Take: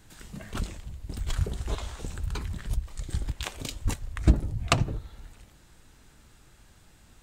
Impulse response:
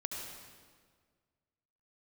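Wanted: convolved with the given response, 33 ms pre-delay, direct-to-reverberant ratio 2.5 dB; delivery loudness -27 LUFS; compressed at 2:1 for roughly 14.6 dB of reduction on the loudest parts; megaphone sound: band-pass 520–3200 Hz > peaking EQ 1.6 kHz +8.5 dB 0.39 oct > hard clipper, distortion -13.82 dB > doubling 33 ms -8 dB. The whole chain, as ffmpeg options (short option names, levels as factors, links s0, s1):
-filter_complex "[0:a]acompressor=threshold=0.01:ratio=2,asplit=2[s0][s1];[1:a]atrim=start_sample=2205,adelay=33[s2];[s1][s2]afir=irnorm=-1:irlink=0,volume=0.668[s3];[s0][s3]amix=inputs=2:normalize=0,highpass=520,lowpass=3200,equalizer=f=1600:t=o:w=0.39:g=8.5,asoftclip=type=hard:threshold=0.0501,asplit=2[s4][s5];[s5]adelay=33,volume=0.398[s6];[s4][s6]amix=inputs=2:normalize=0,volume=7.94"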